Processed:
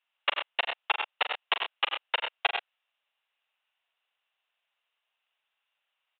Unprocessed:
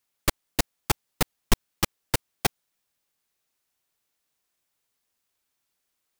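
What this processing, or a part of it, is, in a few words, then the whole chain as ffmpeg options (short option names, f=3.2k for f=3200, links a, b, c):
musical greeting card: -af "aresample=8000,aresample=44100,highpass=f=610:w=0.5412,highpass=f=610:w=1.3066,equalizer=f=2.8k:t=o:w=0.24:g=9,aecho=1:1:41|84|99|126:0.335|0.211|0.473|0.282"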